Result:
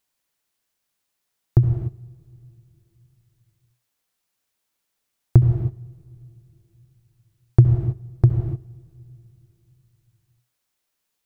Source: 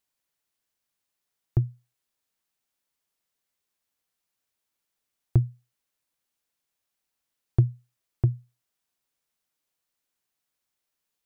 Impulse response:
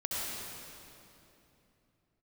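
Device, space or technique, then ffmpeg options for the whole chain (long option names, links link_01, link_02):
keyed gated reverb: -filter_complex "[0:a]asplit=3[link_01][link_02][link_03];[1:a]atrim=start_sample=2205[link_04];[link_02][link_04]afir=irnorm=-1:irlink=0[link_05];[link_03]apad=whole_len=496136[link_06];[link_05][link_06]sidechaingate=range=-18dB:threshold=-53dB:ratio=16:detection=peak,volume=-5.5dB[link_07];[link_01][link_07]amix=inputs=2:normalize=0,volume=5dB"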